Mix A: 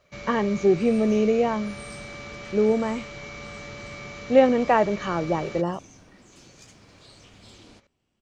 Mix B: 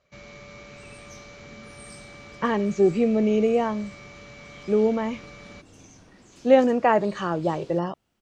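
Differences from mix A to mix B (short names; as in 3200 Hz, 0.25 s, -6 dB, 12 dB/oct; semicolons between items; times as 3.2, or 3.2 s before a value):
speech: entry +2.15 s; first sound -6.0 dB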